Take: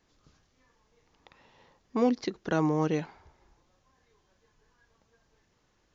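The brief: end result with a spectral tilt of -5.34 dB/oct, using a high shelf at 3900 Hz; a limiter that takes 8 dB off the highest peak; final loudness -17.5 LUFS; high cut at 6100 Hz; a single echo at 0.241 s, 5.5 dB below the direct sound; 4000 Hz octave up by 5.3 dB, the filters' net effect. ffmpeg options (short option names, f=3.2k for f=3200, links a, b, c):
-af "lowpass=6.1k,highshelf=f=3.9k:g=4.5,equalizer=f=4k:t=o:g=4.5,alimiter=limit=-22.5dB:level=0:latency=1,aecho=1:1:241:0.531,volume=15.5dB"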